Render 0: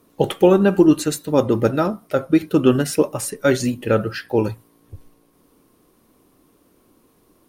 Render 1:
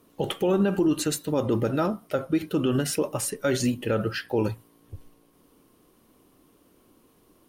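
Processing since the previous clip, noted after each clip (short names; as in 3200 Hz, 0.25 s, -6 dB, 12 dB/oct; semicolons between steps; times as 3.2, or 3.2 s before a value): bell 3000 Hz +4.5 dB 0.24 oct; limiter -12.5 dBFS, peak gain reduction 10.5 dB; gain -2.5 dB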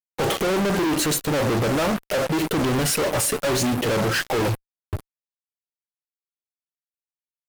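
bell 650 Hz +6.5 dB 1.5 oct; fuzz box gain 47 dB, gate -41 dBFS; gain -7 dB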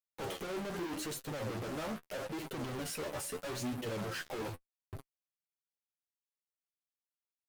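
limiter -28 dBFS, peak gain reduction 10.5 dB; flange 0.8 Hz, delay 7.2 ms, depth 6.7 ms, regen +26%; gain -5 dB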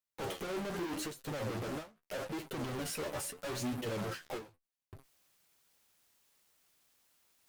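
reverse; upward compressor, threshold -53 dBFS; reverse; ending taper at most 180 dB/s; gain +1 dB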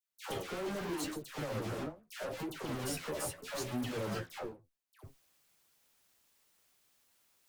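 dispersion lows, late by 0.112 s, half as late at 1200 Hz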